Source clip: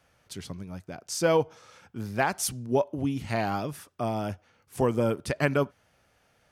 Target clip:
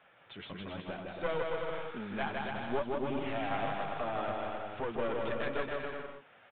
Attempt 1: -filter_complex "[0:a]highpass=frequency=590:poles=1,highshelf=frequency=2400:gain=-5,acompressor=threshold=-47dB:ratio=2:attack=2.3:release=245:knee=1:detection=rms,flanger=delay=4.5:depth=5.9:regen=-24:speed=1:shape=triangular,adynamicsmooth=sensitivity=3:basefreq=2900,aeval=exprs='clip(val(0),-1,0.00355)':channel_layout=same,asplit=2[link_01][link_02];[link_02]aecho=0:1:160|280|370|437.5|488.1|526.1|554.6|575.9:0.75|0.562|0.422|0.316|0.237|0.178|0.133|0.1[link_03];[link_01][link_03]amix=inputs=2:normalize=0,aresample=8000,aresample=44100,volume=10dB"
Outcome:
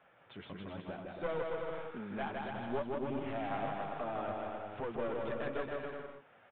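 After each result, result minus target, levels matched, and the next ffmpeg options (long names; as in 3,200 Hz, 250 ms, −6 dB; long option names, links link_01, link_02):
4,000 Hz band −4.5 dB; downward compressor: peak gain reduction +2.5 dB
-filter_complex "[0:a]highpass=frequency=590:poles=1,highshelf=frequency=2400:gain=6,acompressor=threshold=-47dB:ratio=2:attack=2.3:release=245:knee=1:detection=rms,flanger=delay=4.5:depth=5.9:regen=-24:speed=1:shape=triangular,adynamicsmooth=sensitivity=3:basefreq=2900,aeval=exprs='clip(val(0),-1,0.00355)':channel_layout=same,asplit=2[link_01][link_02];[link_02]aecho=0:1:160|280|370|437.5|488.1|526.1|554.6|575.9:0.75|0.562|0.422|0.316|0.237|0.178|0.133|0.1[link_03];[link_01][link_03]amix=inputs=2:normalize=0,aresample=8000,aresample=44100,volume=10dB"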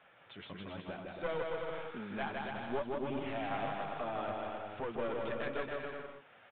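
downward compressor: peak gain reduction +3.5 dB
-filter_complex "[0:a]highpass=frequency=590:poles=1,highshelf=frequency=2400:gain=6,acompressor=threshold=-40dB:ratio=2:attack=2.3:release=245:knee=1:detection=rms,flanger=delay=4.5:depth=5.9:regen=-24:speed=1:shape=triangular,adynamicsmooth=sensitivity=3:basefreq=2900,aeval=exprs='clip(val(0),-1,0.00355)':channel_layout=same,asplit=2[link_01][link_02];[link_02]aecho=0:1:160|280|370|437.5|488.1|526.1|554.6|575.9:0.75|0.562|0.422|0.316|0.237|0.178|0.133|0.1[link_03];[link_01][link_03]amix=inputs=2:normalize=0,aresample=8000,aresample=44100,volume=10dB"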